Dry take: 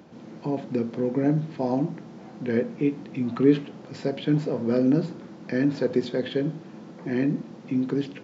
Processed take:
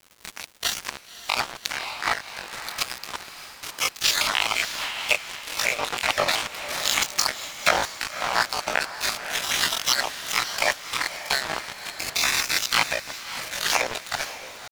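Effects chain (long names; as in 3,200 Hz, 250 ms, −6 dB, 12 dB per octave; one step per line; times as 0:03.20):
time-frequency cells dropped at random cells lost 32%
camcorder AGC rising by 56 dB per second
gate on every frequency bin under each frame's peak −30 dB weak
high-pass filter 470 Hz 24 dB per octave
tempo change 0.56×
dead-zone distortion −49.5 dBFS
surface crackle 300 per second −69 dBFS
on a send: feedback delay with all-pass diffusion 565 ms, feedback 43%, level −11 dB
on the sum: boost into a limiter +34.5 dB
amplitude modulation by smooth noise, depth 60%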